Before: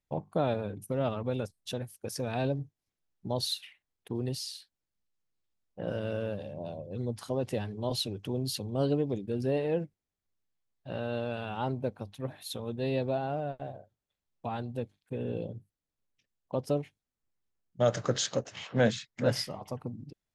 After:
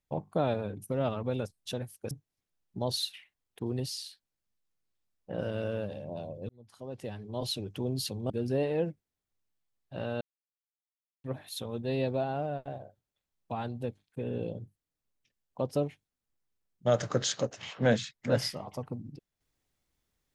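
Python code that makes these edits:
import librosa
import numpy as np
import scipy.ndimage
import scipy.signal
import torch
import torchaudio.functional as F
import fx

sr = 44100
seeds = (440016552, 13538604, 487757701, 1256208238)

y = fx.edit(x, sr, fx.cut(start_s=2.11, length_s=0.49),
    fx.fade_in_span(start_s=6.98, length_s=1.25),
    fx.cut(start_s=8.79, length_s=0.45),
    fx.silence(start_s=11.15, length_s=1.03), tone=tone)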